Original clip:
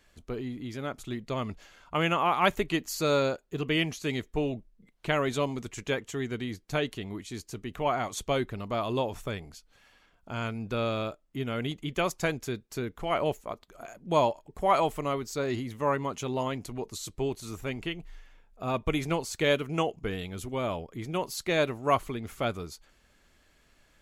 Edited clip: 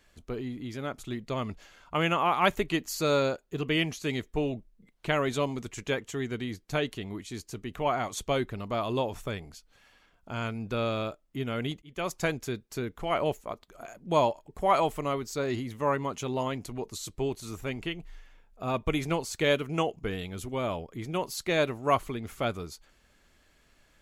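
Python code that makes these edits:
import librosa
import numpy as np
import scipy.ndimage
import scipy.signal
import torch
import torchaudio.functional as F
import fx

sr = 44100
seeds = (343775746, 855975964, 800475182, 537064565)

y = fx.edit(x, sr, fx.fade_in_span(start_s=11.82, length_s=0.35), tone=tone)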